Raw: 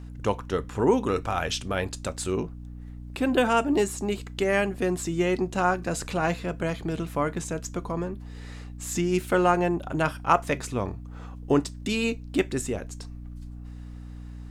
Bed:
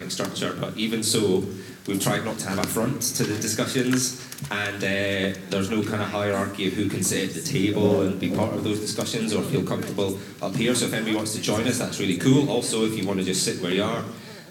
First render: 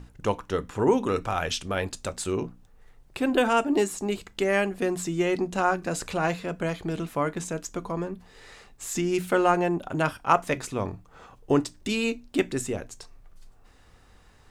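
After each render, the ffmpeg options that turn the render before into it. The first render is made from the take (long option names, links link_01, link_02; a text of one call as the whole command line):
ffmpeg -i in.wav -af "bandreject=frequency=60:width_type=h:width=6,bandreject=frequency=120:width_type=h:width=6,bandreject=frequency=180:width_type=h:width=6,bandreject=frequency=240:width_type=h:width=6,bandreject=frequency=300:width_type=h:width=6" out.wav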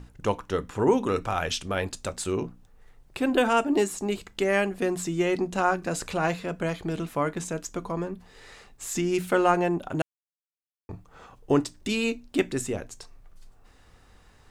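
ffmpeg -i in.wav -filter_complex "[0:a]asplit=3[link_01][link_02][link_03];[link_01]atrim=end=10.02,asetpts=PTS-STARTPTS,afade=type=out:start_time=10.016:duration=0.004:curve=hsin[link_04];[link_02]atrim=start=10.02:end=10.89,asetpts=PTS-STARTPTS,volume=0[link_05];[link_03]atrim=start=10.89,asetpts=PTS-STARTPTS,afade=type=in:duration=0.004:curve=hsin[link_06];[link_04][link_05][link_06]concat=n=3:v=0:a=1" out.wav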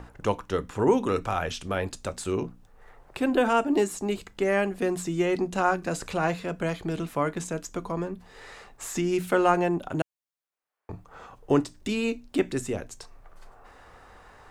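ffmpeg -i in.wav -filter_complex "[0:a]acrossover=split=450|1800[link_01][link_02][link_03];[link_02]acompressor=mode=upward:threshold=-41dB:ratio=2.5[link_04];[link_03]alimiter=level_in=3dB:limit=-24dB:level=0:latency=1:release=87,volume=-3dB[link_05];[link_01][link_04][link_05]amix=inputs=3:normalize=0" out.wav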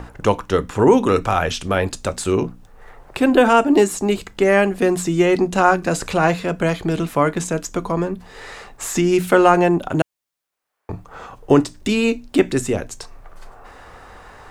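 ffmpeg -i in.wav -af "volume=9.5dB,alimiter=limit=-1dB:level=0:latency=1" out.wav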